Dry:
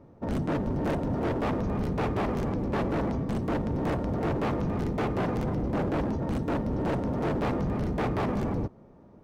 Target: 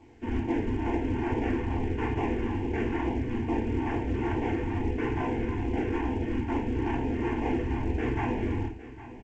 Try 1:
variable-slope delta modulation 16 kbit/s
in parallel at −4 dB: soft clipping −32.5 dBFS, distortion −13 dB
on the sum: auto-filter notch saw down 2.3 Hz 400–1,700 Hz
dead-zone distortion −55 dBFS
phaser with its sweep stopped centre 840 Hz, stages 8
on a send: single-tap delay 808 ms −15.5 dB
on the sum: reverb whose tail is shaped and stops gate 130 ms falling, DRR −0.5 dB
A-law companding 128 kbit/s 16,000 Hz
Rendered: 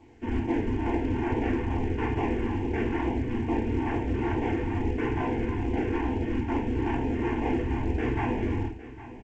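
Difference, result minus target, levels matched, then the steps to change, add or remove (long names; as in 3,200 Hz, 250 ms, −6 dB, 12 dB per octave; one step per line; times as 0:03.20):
soft clipping: distortion −5 dB
change: soft clipping −40 dBFS, distortion −8 dB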